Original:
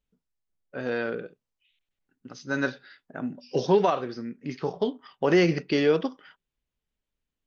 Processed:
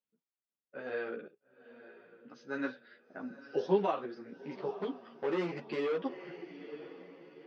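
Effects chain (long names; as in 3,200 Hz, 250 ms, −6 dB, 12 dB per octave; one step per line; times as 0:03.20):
on a send: feedback delay with all-pass diffusion 909 ms, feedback 41%, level −15 dB
0:04.73–0:05.99: on the sum: gain into a clipping stage and back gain 21.5 dB
band-pass filter 200–3,300 Hz
string-ensemble chorus
level −5 dB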